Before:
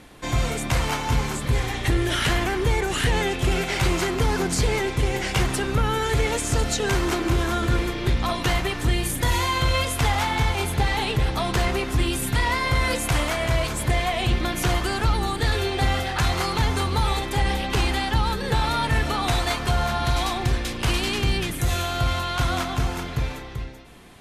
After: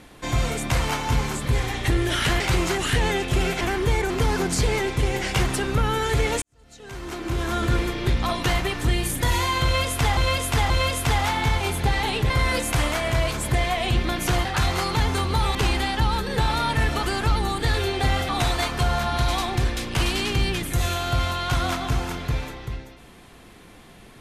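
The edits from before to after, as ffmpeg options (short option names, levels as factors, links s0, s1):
-filter_complex "[0:a]asplit=13[s0][s1][s2][s3][s4][s5][s6][s7][s8][s9][s10][s11][s12];[s0]atrim=end=2.402[s13];[s1]atrim=start=3.718:end=4.102[s14];[s2]atrim=start=2.888:end=3.722[s15];[s3]atrim=start=2.398:end=2.892[s16];[s4]atrim=start=4.098:end=6.42,asetpts=PTS-STARTPTS,afade=t=out:st=2.318:d=0.004:c=hsin[s17];[s5]atrim=start=6.42:end=10.172,asetpts=PTS-STARTPTS,afade=t=in:d=1.19:c=qua[s18];[s6]atrim=start=9.638:end=10.172[s19];[s7]atrim=start=9.638:end=11.242[s20];[s8]atrim=start=12.658:end=14.812[s21];[s9]atrim=start=16.068:end=17.172[s22];[s10]atrim=start=17.688:end=19.172[s23];[s11]atrim=start=14.808:end=16.072[s24];[s12]atrim=start=19.168[s25];[s13][s14]acrossfade=d=0.004:c1=hsin:c2=hsin[s26];[s26][s15]acrossfade=d=0.004:c1=hsin:c2=hsin[s27];[s27][s16]acrossfade=d=0.004:c1=hsin:c2=hsin[s28];[s17][s18]concat=n=2:v=0:a=1[s29];[s28][s29]acrossfade=d=0.004:c1=hsin:c2=hsin[s30];[s30][s19]acrossfade=d=0.004:c1=hsin:c2=hsin[s31];[s31][s20]acrossfade=d=0.004:c1=hsin:c2=hsin[s32];[s32][s21]acrossfade=d=0.004:c1=hsin:c2=hsin[s33];[s33][s22]acrossfade=d=0.004:c1=hsin:c2=hsin[s34];[s34][s23]acrossfade=d=0.004:c1=hsin:c2=hsin[s35];[s35][s24]acrossfade=d=0.004:c1=hsin:c2=hsin[s36];[s36][s25]acrossfade=d=0.004:c1=hsin:c2=hsin"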